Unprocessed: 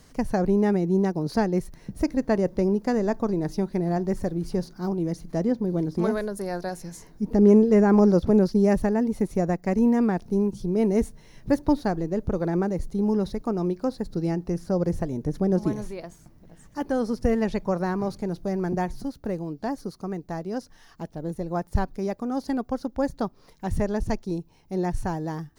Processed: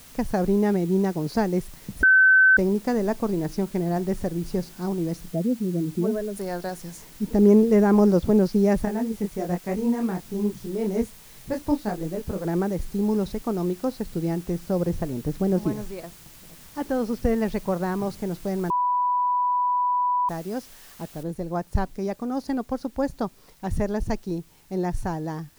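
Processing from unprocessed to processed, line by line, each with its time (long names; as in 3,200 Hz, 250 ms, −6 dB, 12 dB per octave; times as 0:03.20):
0:02.03–0:02.57: beep over 1,530 Hz −12 dBFS
0:05.28–0:06.36: expanding power law on the bin magnitudes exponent 1.8
0:08.85–0:12.45: micro pitch shift up and down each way 43 cents
0:14.03–0:17.92: high-frequency loss of the air 61 metres
0:18.70–0:20.29: beep over 988 Hz −19.5 dBFS
0:21.23: noise floor change −49 dB −59 dB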